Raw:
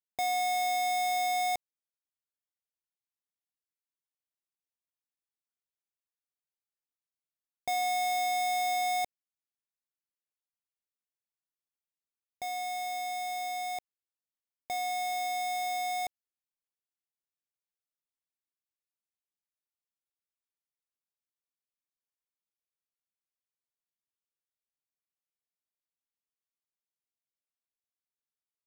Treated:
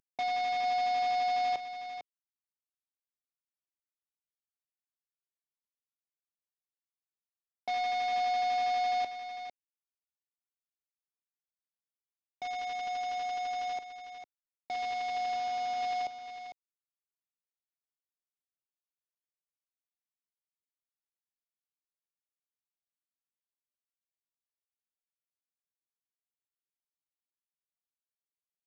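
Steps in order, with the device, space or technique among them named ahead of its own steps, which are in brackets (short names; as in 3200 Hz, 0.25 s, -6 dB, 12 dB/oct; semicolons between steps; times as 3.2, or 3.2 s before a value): 15.35–15.81 dynamic EQ 1700 Hz, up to -6 dB, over -54 dBFS, Q 1.7; early wireless headset (HPF 170 Hz 24 dB/oct; CVSD 32 kbps); echo 0.451 s -9.5 dB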